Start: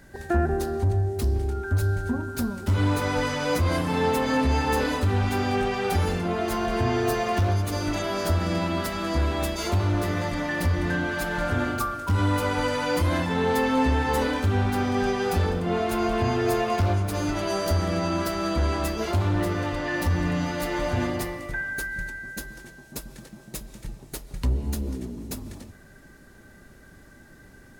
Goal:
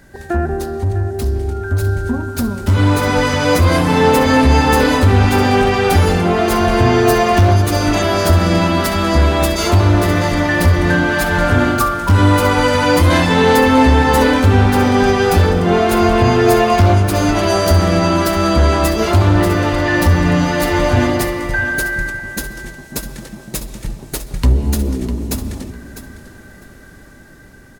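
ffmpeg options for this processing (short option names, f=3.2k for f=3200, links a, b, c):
-filter_complex "[0:a]asettb=1/sr,asplit=3[a][b][c];[a]atrim=end=13.104[d];[b]atrim=start=13.1:end=13.56,asetpts=PTS-STARTPTS,afade=t=in:d=0.004:c=qsin,afade=t=out:st=0.456:d=0.004:c=qsin,equalizer=f=5k:w=0.43:g=4.5[e];[c]atrim=start=13.556[f];[d][e]acrossfade=d=0.004:c1=hsin:c2=qsin[g];[g][f]acrossfade=d=0.004:c1=qsin:c2=hsin,asplit=2[h][i];[i]aecho=0:1:652|1304:0.251|0.0452[j];[h][j]amix=inputs=2:normalize=0,dynaudnorm=f=400:g=13:m=7dB,volume=5dB"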